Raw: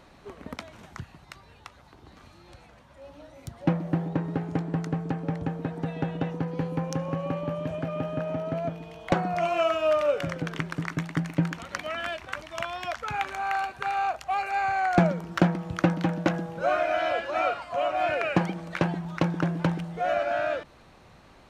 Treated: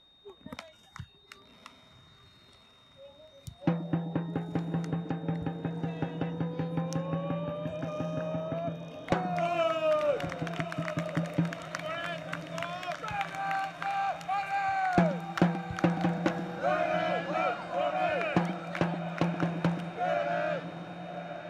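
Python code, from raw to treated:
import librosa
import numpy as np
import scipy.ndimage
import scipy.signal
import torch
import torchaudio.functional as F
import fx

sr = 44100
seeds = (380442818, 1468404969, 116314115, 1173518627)

y = fx.noise_reduce_blind(x, sr, reduce_db=12)
y = fx.echo_diffused(y, sr, ms=1126, feedback_pct=57, wet_db=-11)
y = y + 10.0 ** (-55.0 / 20.0) * np.sin(2.0 * np.pi * 3700.0 * np.arange(len(y)) / sr)
y = y * 10.0 ** (-4.0 / 20.0)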